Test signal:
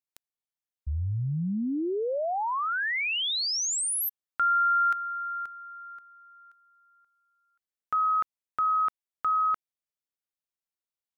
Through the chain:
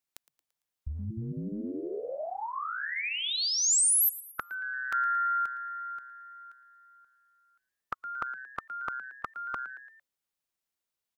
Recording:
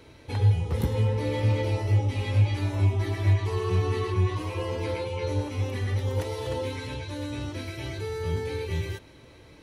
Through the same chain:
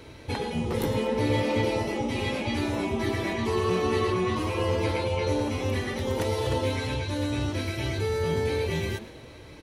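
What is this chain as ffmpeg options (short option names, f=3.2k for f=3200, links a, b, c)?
-filter_complex "[0:a]asplit=5[a][b][c][d][e];[b]adelay=113,afreqshift=130,volume=-18dB[f];[c]adelay=226,afreqshift=260,volume=-24.7dB[g];[d]adelay=339,afreqshift=390,volume=-31.5dB[h];[e]adelay=452,afreqshift=520,volume=-38.2dB[i];[a][f][g][h][i]amix=inputs=5:normalize=0,afftfilt=real='re*lt(hypot(re,im),0.355)':imag='im*lt(hypot(re,im),0.355)':win_size=1024:overlap=0.75,volume=5dB"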